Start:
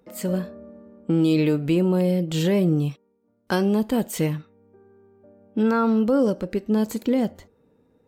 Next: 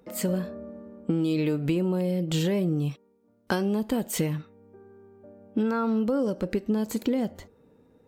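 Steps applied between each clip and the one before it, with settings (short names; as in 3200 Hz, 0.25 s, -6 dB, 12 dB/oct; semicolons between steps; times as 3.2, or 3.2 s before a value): compressor, threshold -25 dBFS, peak gain reduction 9.5 dB; gain +2.5 dB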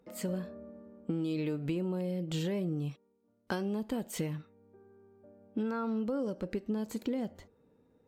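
high shelf 9900 Hz -6 dB; gain -8 dB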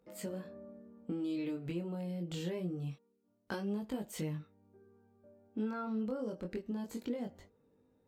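chorus 0.25 Hz, delay 19.5 ms, depth 3.8 ms; gain -1.5 dB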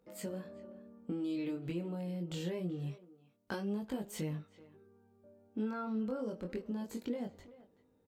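speakerphone echo 0.38 s, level -16 dB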